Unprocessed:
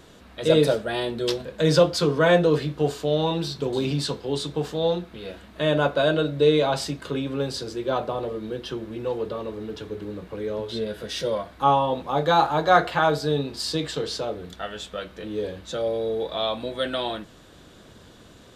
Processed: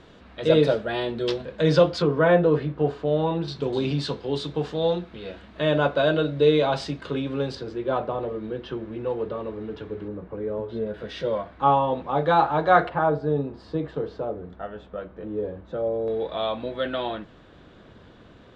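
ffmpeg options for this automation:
-af "asetnsamples=n=441:p=0,asendcmd='2.02 lowpass f 1900;3.48 lowpass f 4200;7.55 lowpass f 2400;10.08 lowpass f 1300;10.94 lowpass f 2500;12.89 lowpass f 1100;16.08 lowpass f 2700',lowpass=3.7k"

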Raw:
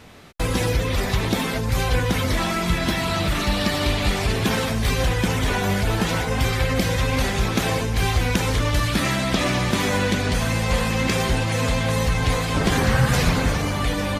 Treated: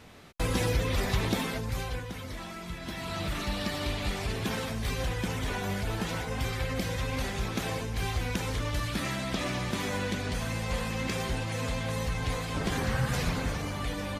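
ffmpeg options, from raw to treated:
-af "volume=1dB,afade=t=out:st=1.25:d=0.82:silence=0.266073,afade=t=in:st=2.81:d=0.43:silence=0.446684"

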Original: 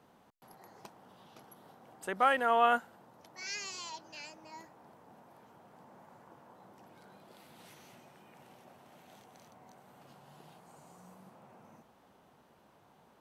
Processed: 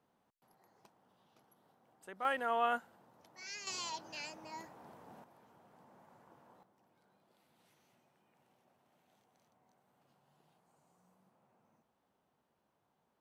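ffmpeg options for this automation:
-af "asetnsamples=n=441:p=0,asendcmd='2.25 volume volume -6.5dB;3.67 volume volume 2dB;5.24 volume volume -6dB;6.63 volume volume -16dB',volume=-13.5dB"

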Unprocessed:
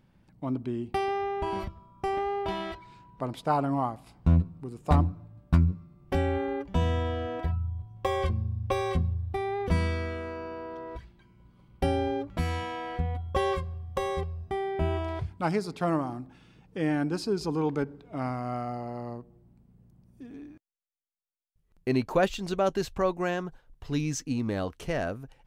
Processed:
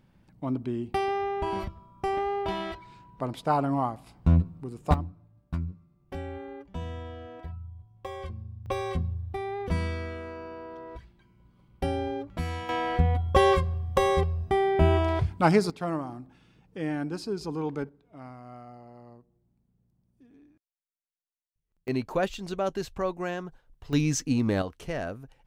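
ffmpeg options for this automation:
-af "asetnsamples=n=441:p=0,asendcmd='4.94 volume volume -10dB;8.66 volume volume -2.5dB;12.69 volume volume 7dB;15.7 volume volume -3.5dB;17.89 volume volume -12.5dB;21.88 volume volume -3dB;23.93 volume volume 4.5dB;24.62 volume volume -2.5dB',volume=1dB"

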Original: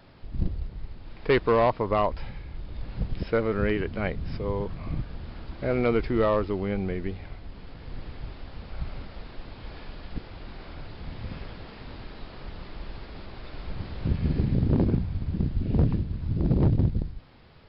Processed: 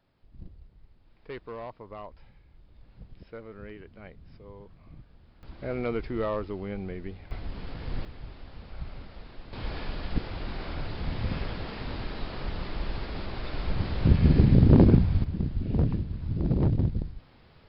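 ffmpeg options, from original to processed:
-af "asetnsamples=n=441:p=0,asendcmd='5.43 volume volume -6.5dB;7.31 volume volume 5dB;8.05 volume volume -4.5dB;9.53 volume volume 6dB;15.24 volume volume -2.5dB',volume=-18dB"

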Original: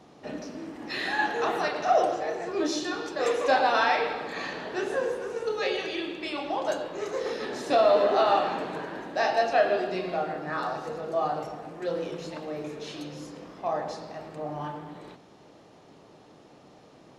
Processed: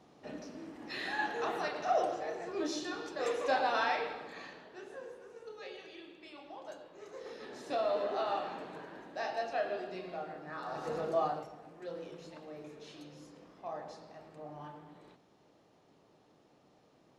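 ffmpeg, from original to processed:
-af "volume=10dB,afade=t=out:st=3.88:d=0.81:silence=0.298538,afade=t=in:st=6.95:d=0.77:silence=0.473151,afade=t=in:st=10.65:d=0.34:silence=0.266073,afade=t=out:st=10.99:d=0.49:silence=0.251189"

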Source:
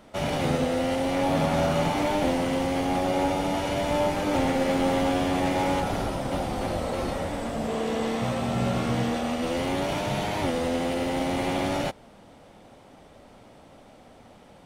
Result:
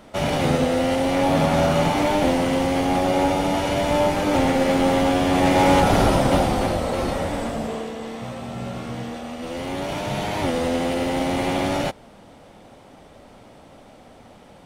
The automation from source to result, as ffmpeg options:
-af "volume=21dB,afade=t=in:st=5.22:d=0.93:silence=0.446684,afade=t=out:st=6.15:d=0.63:silence=0.446684,afade=t=out:st=7.41:d=0.52:silence=0.316228,afade=t=in:st=9.33:d=1.25:silence=0.354813"

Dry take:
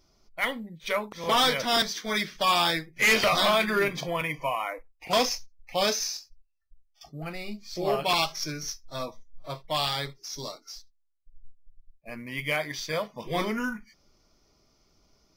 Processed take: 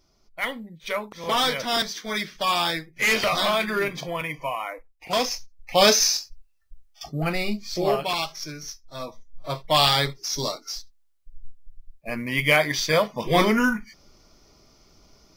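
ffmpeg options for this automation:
-af "volume=22.5dB,afade=t=in:st=5.28:d=0.79:silence=0.281838,afade=t=out:st=7.41:d=0.7:silence=0.223872,afade=t=in:st=8.95:d=0.9:silence=0.266073"

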